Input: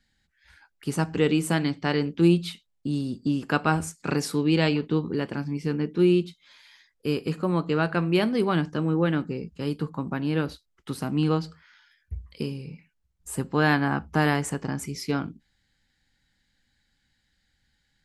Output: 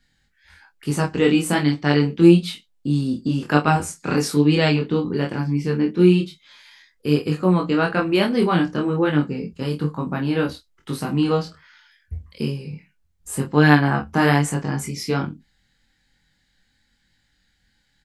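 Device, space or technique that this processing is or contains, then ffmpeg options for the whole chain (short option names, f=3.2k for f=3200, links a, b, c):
double-tracked vocal: -filter_complex "[0:a]asplit=2[a][b];[b]adelay=27,volume=-7dB[c];[a][c]amix=inputs=2:normalize=0,flanger=delay=20:depth=3.3:speed=1.1,volume=7.5dB"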